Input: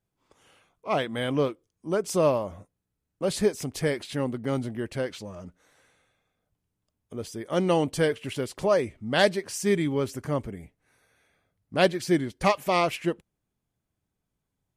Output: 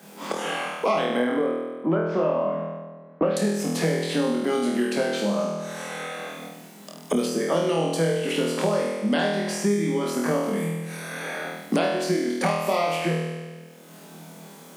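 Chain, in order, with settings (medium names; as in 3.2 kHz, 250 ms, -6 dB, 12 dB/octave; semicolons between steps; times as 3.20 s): 1.17–3.37 s: low-pass 1.6 kHz 24 dB/octave; compression, threshold -31 dBFS, peak gain reduction 15 dB; rippled Chebyshev high-pass 160 Hz, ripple 3 dB; flutter echo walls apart 4.2 m, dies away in 0.82 s; three bands compressed up and down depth 100%; trim +8 dB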